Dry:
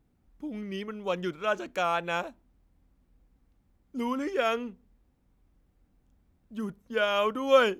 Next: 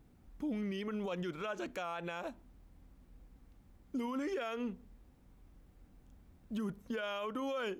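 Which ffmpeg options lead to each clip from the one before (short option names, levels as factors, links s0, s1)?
-af "acompressor=threshold=0.0178:ratio=6,alimiter=level_in=4.22:limit=0.0631:level=0:latency=1:release=54,volume=0.237,volume=2"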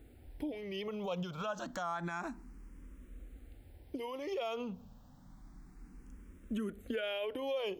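-filter_complex "[0:a]acompressor=threshold=0.01:ratio=6,asplit=2[s0][s1];[s1]afreqshift=0.29[s2];[s0][s2]amix=inputs=2:normalize=1,volume=2.82"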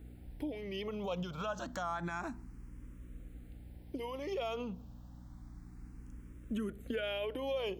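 -af "aeval=exprs='val(0)+0.00282*(sin(2*PI*60*n/s)+sin(2*PI*2*60*n/s)/2+sin(2*PI*3*60*n/s)/3+sin(2*PI*4*60*n/s)/4+sin(2*PI*5*60*n/s)/5)':c=same"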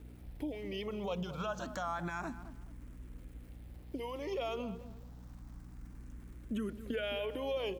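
-filter_complex "[0:a]asplit=2[s0][s1];[s1]adelay=215,lowpass=f=1400:p=1,volume=0.251,asplit=2[s2][s3];[s3]adelay=215,lowpass=f=1400:p=1,volume=0.29,asplit=2[s4][s5];[s5]adelay=215,lowpass=f=1400:p=1,volume=0.29[s6];[s0][s2][s4][s6]amix=inputs=4:normalize=0,aeval=exprs='val(0)*gte(abs(val(0)),0.00112)':c=same"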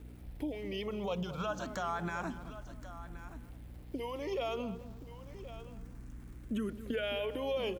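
-af "aecho=1:1:1074:0.2,volume=1.19"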